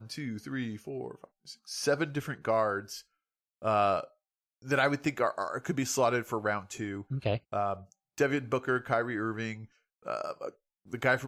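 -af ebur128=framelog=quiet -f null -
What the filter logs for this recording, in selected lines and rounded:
Integrated loudness:
  I:         -31.8 LUFS
  Threshold: -42.5 LUFS
Loudness range:
  LRA:         3.4 LU
  Threshold: -52.0 LUFS
  LRA low:   -34.0 LUFS
  LRA high:  -30.6 LUFS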